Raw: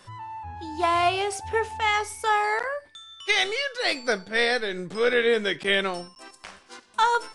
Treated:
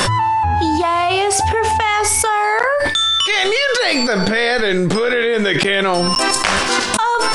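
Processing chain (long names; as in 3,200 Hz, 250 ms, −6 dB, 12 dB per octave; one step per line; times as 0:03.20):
dynamic equaliser 920 Hz, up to +3 dB, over −29 dBFS, Q 0.72
envelope flattener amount 100%
level −1 dB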